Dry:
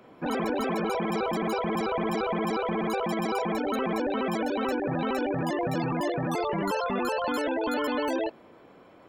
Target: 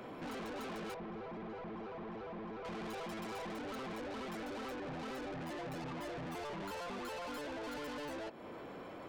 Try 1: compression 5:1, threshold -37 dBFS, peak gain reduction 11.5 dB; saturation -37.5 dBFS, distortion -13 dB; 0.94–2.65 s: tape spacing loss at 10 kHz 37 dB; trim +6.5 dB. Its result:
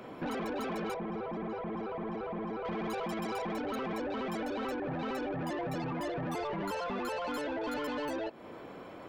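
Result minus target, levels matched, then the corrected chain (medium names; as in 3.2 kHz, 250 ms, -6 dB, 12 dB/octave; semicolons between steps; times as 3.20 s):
saturation: distortion -7 dB
compression 5:1, threshold -37 dBFS, peak gain reduction 11.5 dB; saturation -48 dBFS, distortion -6 dB; 0.94–2.65 s: tape spacing loss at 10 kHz 37 dB; trim +6.5 dB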